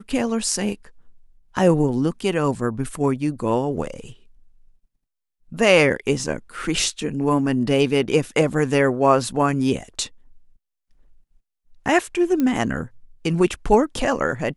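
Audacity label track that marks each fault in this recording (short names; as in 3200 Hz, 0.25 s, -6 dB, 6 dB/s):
12.400000	12.400000	pop -11 dBFS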